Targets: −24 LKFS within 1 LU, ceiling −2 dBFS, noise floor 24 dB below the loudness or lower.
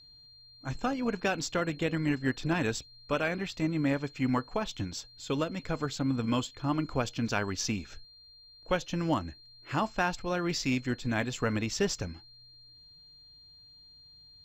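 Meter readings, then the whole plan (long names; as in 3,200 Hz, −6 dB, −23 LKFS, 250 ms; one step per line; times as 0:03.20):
interfering tone 4,200 Hz; level of the tone −53 dBFS; integrated loudness −32.0 LKFS; sample peak −15.0 dBFS; target loudness −24.0 LKFS
→ notch filter 4,200 Hz, Q 30
level +8 dB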